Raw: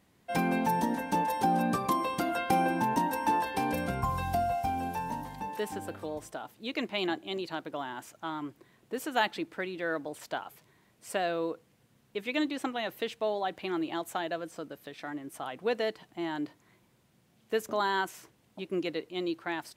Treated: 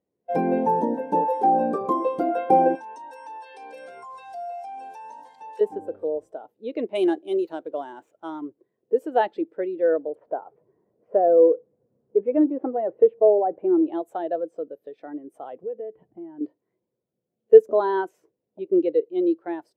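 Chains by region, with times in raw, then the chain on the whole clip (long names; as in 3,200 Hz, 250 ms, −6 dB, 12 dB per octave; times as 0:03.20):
0:01.30–0:01.81: high-pass filter 200 Hz + hard clipping −21.5 dBFS
0:02.75–0:05.61: meter weighting curve ITU-R 468 + downward compressor 10 to 1, threshold −35 dBFS
0:06.95–0:08.41: running median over 9 samples + high-shelf EQ 2,500 Hz +11 dB
0:10.15–0:13.87: mu-law and A-law mismatch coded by mu + low-pass filter 1,400 Hz
0:15.63–0:16.41: low-pass filter 2,900 Hz 24 dB per octave + parametric band 67 Hz +14.5 dB 3 octaves + downward compressor, threshold −40 dBFS
whole clip: parametric band 470 Hz +14 dB 1.3 octaves; every bin expanded away from the loudest bin 1.5 to 1; level +3.5 dB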